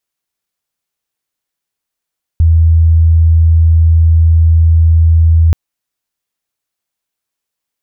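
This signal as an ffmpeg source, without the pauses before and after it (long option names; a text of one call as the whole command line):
ffmpeg -f lavfi -i "aevalsrc='0.631*sin(2*PI*81.7*t)':duration=3.13:sample_rate=44100" out.wav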